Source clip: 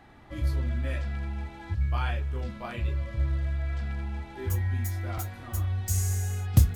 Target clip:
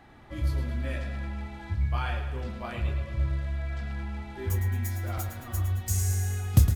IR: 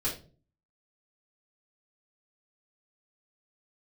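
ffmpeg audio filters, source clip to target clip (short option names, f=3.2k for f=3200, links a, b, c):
-af "aecho=1:1:110|220|330|440|550|660:0.355|0.192|0.103|0.0559|0.0302|0.0163"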